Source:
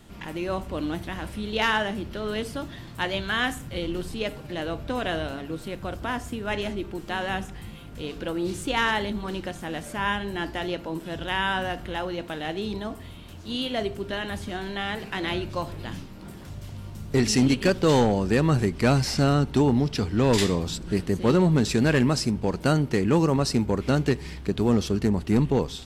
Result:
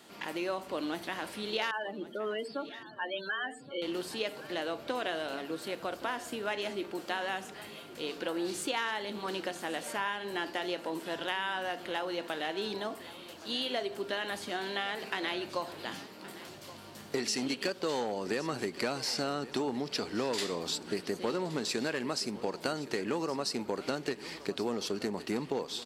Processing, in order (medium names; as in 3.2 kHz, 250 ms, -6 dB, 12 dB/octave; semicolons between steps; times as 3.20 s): high-pass 360 Hz 12 dB/octave; peaking EQ 4.5 kHz +5.5 dB 0.23 oct; compression 5:1, threshold -30 dBFS, peak gain reduction 12 dB; 1.71–3.82 s: loudest bins only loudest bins 16; feedback delay 1120 ms, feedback 33%, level -17 dB